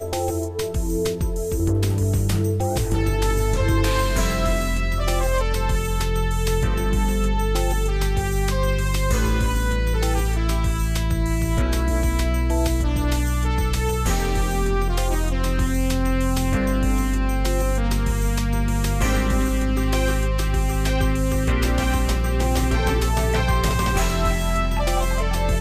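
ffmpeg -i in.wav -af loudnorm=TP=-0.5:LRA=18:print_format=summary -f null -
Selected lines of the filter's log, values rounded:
Input Integrated:    -22.2 LUFS
Input True Peak:     -10.6 dBTP
Input LRA:             1.3 LU
Input Threshold:     -32.2 LUFS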